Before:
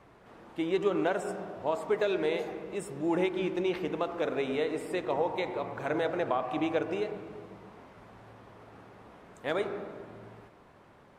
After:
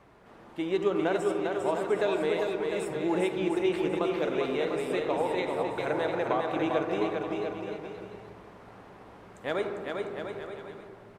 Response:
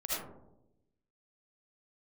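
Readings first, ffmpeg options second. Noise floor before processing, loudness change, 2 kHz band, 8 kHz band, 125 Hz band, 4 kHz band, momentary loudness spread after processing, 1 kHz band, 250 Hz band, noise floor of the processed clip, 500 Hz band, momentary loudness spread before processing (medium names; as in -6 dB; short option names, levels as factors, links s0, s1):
-57 dBFS, +2.0 dB, +2.5 dB, no reading, +2.0 dB, +2.5 dB, 14 LU, +2.5 dB, +2.5 dB, -51 dBFS, +2.5 dB, 16 LU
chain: -filter_complex "[0:a]aecho=1:1:400|700|925|1094|1220:0.631|0.398|0.251|0.158|0.1,asplit=2[s0][s1];[1:a]atrim=start_sample=2205,asetrate=66150,aresample=44100,adelay=5[s2];[s1][s2]afir=irnorm=-1:irlink=0,volume=0.2[s3];[s0][s3]amix=inputs=2:normalize=0"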